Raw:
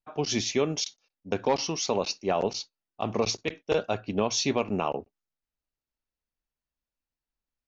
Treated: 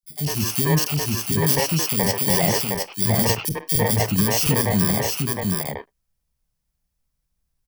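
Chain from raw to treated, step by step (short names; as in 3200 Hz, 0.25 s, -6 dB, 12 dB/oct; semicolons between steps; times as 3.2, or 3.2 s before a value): FFT order left unsorted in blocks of 32 samples; in parallel at -1 dB: limiter -24 dBFS, peak gain reduction 11 dB; on the sum: resonant low shelf 210 Hz +7 dB, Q 1.5; on a send: echo 0.712 s -4 dB; on the sum: AGC gain up to 6.5 dB; three bands offset in time highs, lows, mids 30/100 ms, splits 340/2800 Hz; gain -1.5 dB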